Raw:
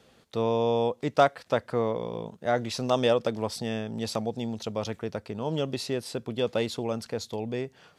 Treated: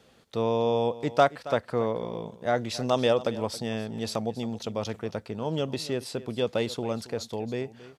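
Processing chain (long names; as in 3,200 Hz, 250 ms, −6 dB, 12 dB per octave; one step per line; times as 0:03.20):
single-tap delay 274 ms −17 dB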